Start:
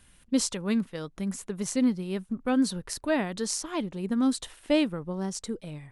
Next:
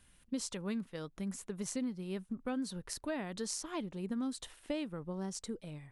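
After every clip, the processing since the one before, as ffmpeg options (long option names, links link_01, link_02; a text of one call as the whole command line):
ffmpeg -i in.wav -af "acompressor=threshold=-27dB:ratio=6,volume=-6.5dB" out.wav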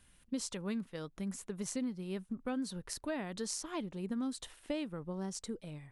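ffmpeg -i in.wav -af anull out.wav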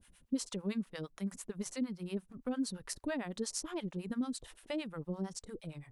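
ffmpeg -i in.wav -filter_complex "[0:a]acrossover=split=570[link_01][link_02];[link_01]aeval=exprs='val(0)*(1-1/2+1/2*cos(2*PI*8.8*n/s))':channel_layout=same[link_03];[link_02]aeval=exprs='val(0)*(1-1/2-1/2*cos(2*PI*8.8*n/s))':channel_layout=same[link_04];[link_03][link_04]amix=inputs=2:normalize=0,volume=5dB" out.wav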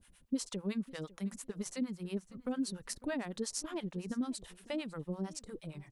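ffmpeg -i in.wav -af "aecho=1:1:552|1104:0.1|0.017" out.wav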